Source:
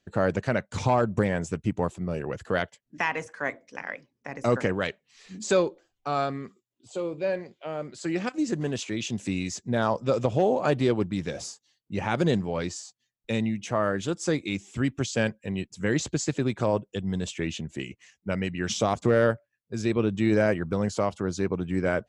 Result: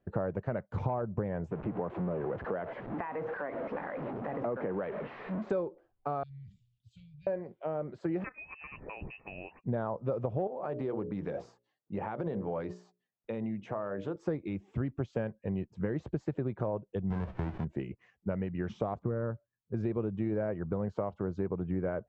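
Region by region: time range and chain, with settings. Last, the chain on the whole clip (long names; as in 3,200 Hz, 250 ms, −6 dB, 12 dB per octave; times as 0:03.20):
0:01.51–0:05.50: converter with a step at zero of −30 dBFS + three-way crossover with the lows and the highs turned down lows −14 dB, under 160 Hz, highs −23 dB, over 3,300 Hz + downward compressor 2 to 1, threshold −32 dBFS
0:06.23–0:07.27: inverse Chebyshev band-stop filter 310–1,200 Hz, stop band 60 dB + level that may fall only so fast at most 72 dB per second
0:08.24–0:09.64: parametric band 980 Hz +11 dB 0.38 octaves + voice inversion scrambler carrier 2,800 Hz
0:10.47–0:14.16: high-pass filter 240 Hz 6 dB per octave + mains-hum notches 60/120/180/240/300/360/420/480/540/600 Hz + downward compressor 3 to 1, threshold −31 dBFS
0:17.10–0:17.63: spectral envelope flattened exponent 0.1 + RIAA equalisation playback + notch filter 1,200 Hz, Q 19
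0:19.02–0:19.74: low-pass with resonance 1,100 Hz, resonance Q 1.5 + parametric band 700 Hz −13 dB 1.6 octaves
whole clip: parametric band 260 Hz −4.5 dB 0.6 octaves; downward compressor 5 to 1, threshold −33 dBFS; low-pass filter 1,000 Hz 12 dB per octave; level +3.5 dB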